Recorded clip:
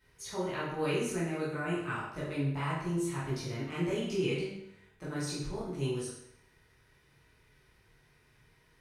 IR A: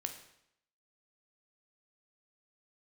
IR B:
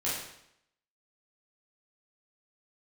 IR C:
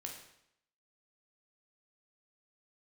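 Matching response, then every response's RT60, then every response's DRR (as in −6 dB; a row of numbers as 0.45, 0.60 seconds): B; 0.75, 0.75, 0.75 seconds; 5.5, −9.0, 0.5 decibels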